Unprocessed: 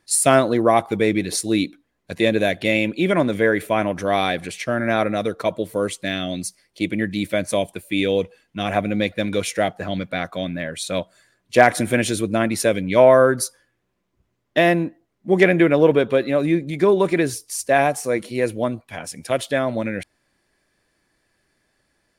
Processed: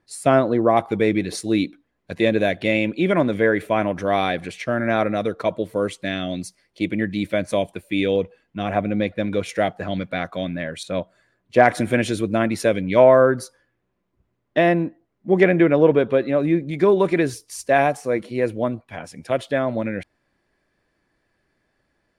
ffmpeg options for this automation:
-af "asetnsamples=n=441:p=0,asendcmd='0.77 lowpass f 3100;8.16 lowpass f 1600;9.49 lowpass f 3700;10.83 lowpass f 1400;11.65 lowpass f 3200;13.04 lowpass f 1900;16.71 lowpass f 3900;17.97 lowpass f 2100',lowpass=f=1200:p=1"

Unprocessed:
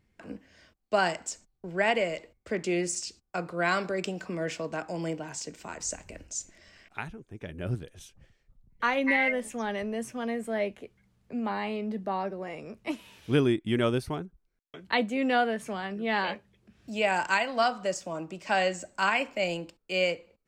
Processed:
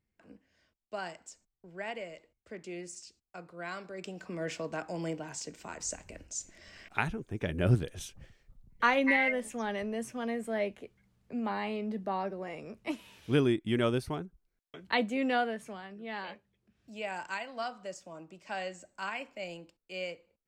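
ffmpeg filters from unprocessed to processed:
-af "volume=2.11,afade=t=in:st=3.89:d=0.65:silence=0.298538,afade=t=in:st=6.39:d=0.69:silence=0.334965,afade=t=out:st=7.93:d=1.3:silence=0.354813,afade=t=out:st=15.17:d=0.7:silence=0.354813"

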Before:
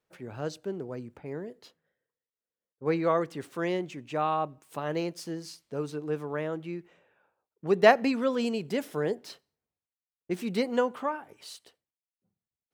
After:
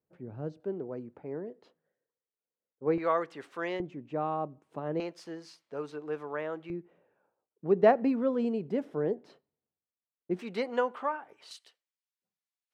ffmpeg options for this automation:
-af "asetnsamples=n=441:p=0,asendcmd='0.6 bandpass f 430;2.98 bandpass f 1300;3.8 bandpass f 280;5 bandpass f 1100;6.7 bandpass f 300;10.39 bandpass f 1100;11.51 bandpass f 3000',bandpass=f=170:t=q:w=0.54:csg=0"

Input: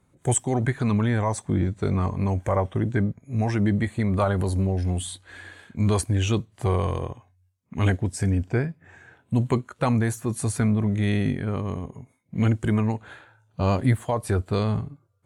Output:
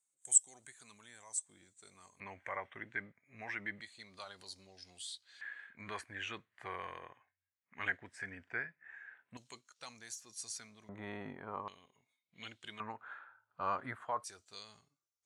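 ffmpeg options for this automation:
-af "asetnsamples=n=441:p=0,asendcmd='2.2 bandpass f 2000;3.81 bandpass f 4800;5.41 bandpass f 1800;9.37 bandpass f 5400;10.89 bandpass f 980;11.68 bandpass f 3600;12.8 bandpass f 1300;14.24 bandpass f 5900',bandpass=f=7900:t=q:w=3.5:csg=0"

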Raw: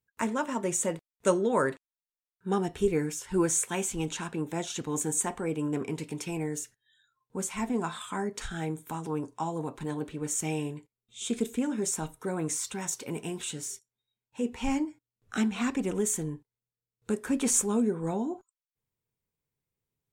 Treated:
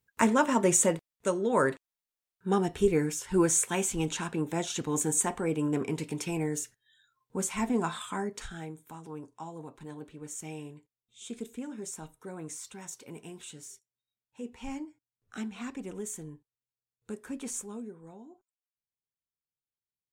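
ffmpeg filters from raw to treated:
-af "volume=4.47,afade=t=out:st=0.75:d=0.57:silence=0.266073,afade=t=in:st=1.32:d=0.31:silence=0.446684,afade=t=out:st=7.9:d=0.83:silence=0.281838,afade=t=out:st=17.25:d=0.83:silence=0.354813"

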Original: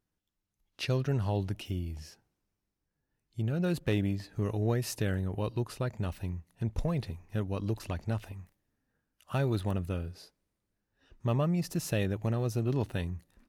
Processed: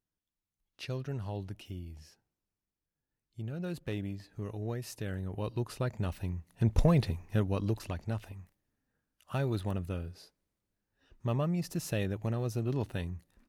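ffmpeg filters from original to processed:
-af "volume=2.24,afade=t=in:st=5.01:d=0.83:silence=0.421697,afade=t=in:st=6.35:d=0.46:silence=0.446684,afade=t=out:st=6.81:d=1.15:silence=0.334965"

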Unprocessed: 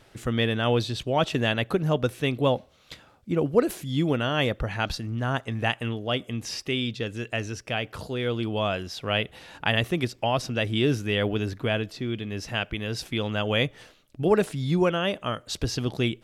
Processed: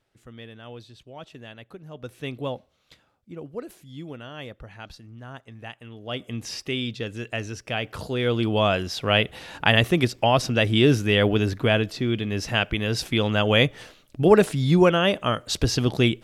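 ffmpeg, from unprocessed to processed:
-af "volume=4.22,afade=t=in:st=1.92:d=0.36:silence=0.266073,afade=t=out:st=2.28:d=1.04:silence=0.446684,afade=t=in:st=5.9:d=0.44:silence=0.223872,afade=t=in:st=7.61:d=0.93:silence=0.501187"

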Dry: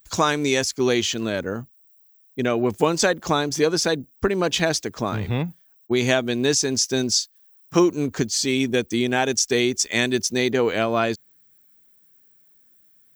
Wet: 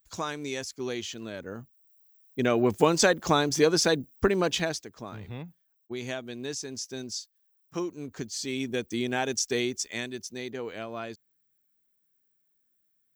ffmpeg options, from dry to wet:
-af "volume=1.88,afade=t=in:st=1.39:d=1.19:silence=0.281838,afade=t=out:st=4.29:d=0.57:silence=0.223872,afade=t=in:st=7.99:d=1.08:silence=0.421697,afade=t=out:st=9.57:d=0.56:silence=0.398107"

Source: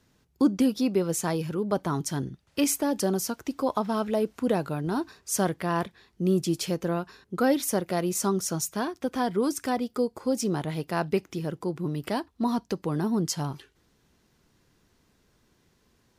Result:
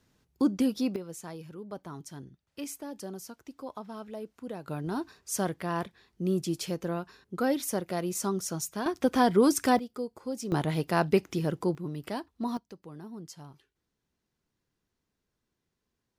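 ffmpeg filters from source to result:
-af "asetnsamples=n=441:p=0,asendcmd='0.96 volume volume -14dB;4.68 volume volume -4.5dB;8.86 volume volume 4dB;9.79 volume volume -8.5dB;10.52 volume volume 2dB;11.75 volume volume -6dB;12.57 volume volume -17dB',volume=0.668"

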